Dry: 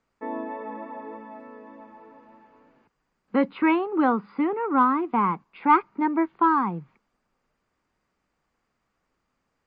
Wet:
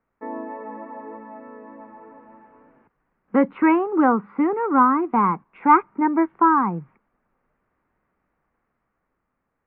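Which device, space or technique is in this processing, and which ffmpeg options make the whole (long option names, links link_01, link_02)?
action camera in a waterproof case: -af "lowpass=frequency=2100:width=0.5412,lowpass=frequency=2100:width=1.3066,dynaudnorm=framelen=260:gausssize=11:maxgain=4.5dB" -ar 32000 -c:a aac -b:a 64k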